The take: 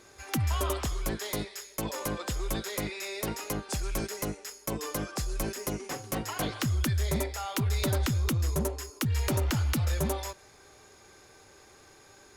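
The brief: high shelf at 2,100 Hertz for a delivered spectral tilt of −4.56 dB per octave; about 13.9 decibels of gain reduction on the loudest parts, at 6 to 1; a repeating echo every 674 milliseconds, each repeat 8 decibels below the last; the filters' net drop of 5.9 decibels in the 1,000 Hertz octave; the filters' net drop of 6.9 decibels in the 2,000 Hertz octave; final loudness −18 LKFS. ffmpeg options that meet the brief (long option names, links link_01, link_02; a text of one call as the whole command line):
ffmpeg -i in.wav -af "equalizer=frequency=1000:width_type=o:gain=-5.5,equalizer=frequency=2000:width_type=o:gain=-4.5,highshelf=frequency=2100:gain=-4.5,acompressor=threshold=-41dB:ratio=6,aecho=1:1:674|1348|2022|2696|3370:0.398|0.159|0.0637|0.0255|0.0102,volume=26dB" out.wav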